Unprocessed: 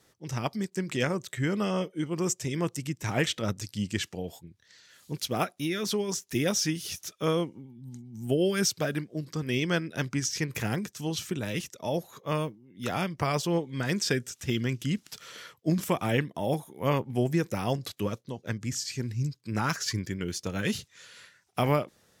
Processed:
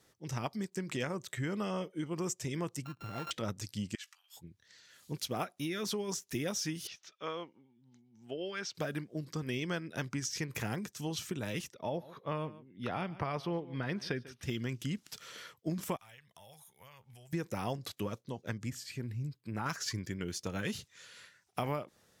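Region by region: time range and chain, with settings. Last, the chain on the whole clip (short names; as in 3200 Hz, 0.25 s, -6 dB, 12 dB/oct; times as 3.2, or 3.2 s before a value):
2.85–3.31 sample sorter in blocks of 32 samples + bell 9900 Hz -14.5 dB 1.4 oct + compressor 2:1, threshold -41 dBFS
3.95–4.37 compressor 4:1, threshold -39 dBFS + steep high-pass 1100 Hz 48 dB/oct + doubler 17 ms -13.5 dB
6.87–8.75 HPF 1200 Hz 6 dB/oct + air absorption 190 m
11.72–14.43 running mean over 6 samples + echo 0.144 s -21 dB
15.96–17.33 passive tone stack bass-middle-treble 10-0-10 + compressor 12:1, threshold -48 dBFS
18.7–19.66 bell 6000 Hz -11.5 dB 0.98 oct + compressor 1.5:1, threshold -34 dBFS
whole clip: dynamic EQ 960 Hz, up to +3 dB, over -45 dBFS, Q 1.2; compressor 3:1, threshold -30 dBFS; gain -3.5 dB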